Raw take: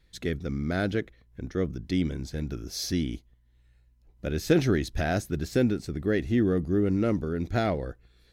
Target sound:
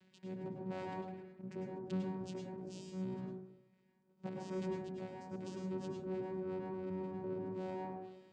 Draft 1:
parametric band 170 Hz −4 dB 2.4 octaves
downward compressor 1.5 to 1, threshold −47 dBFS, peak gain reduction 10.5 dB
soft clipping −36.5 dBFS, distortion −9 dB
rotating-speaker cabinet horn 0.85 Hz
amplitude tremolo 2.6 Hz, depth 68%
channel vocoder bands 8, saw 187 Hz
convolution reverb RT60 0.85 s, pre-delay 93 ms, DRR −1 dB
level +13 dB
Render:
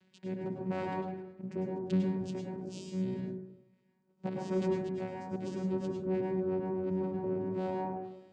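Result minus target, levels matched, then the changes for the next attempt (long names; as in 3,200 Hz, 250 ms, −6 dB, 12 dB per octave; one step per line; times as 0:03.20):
soft clipping: distortion −6 dB
change: soft clipping −47 dBFS, distortion −4 dB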